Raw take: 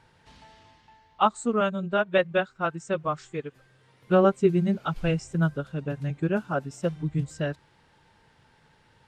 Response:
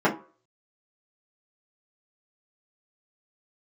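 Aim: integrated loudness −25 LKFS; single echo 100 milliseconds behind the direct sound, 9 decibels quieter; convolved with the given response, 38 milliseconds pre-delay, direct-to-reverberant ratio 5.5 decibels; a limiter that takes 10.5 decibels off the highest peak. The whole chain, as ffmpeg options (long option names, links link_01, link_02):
-filter_complex "[0:a]alimiter=limit=-19dB:level=0:latency=1,aecho=1:1:100:0.355,asplit=2[link_01][link_02];[1:a]atrim=start_sample=2205,adelay=38[link_03];[link_02][link_03]afir=irnorm=-1:irlink=0,volume=-23dB[link_04];[link_01][link_04]amix=inputs=2:normalize=0,volume=3dB"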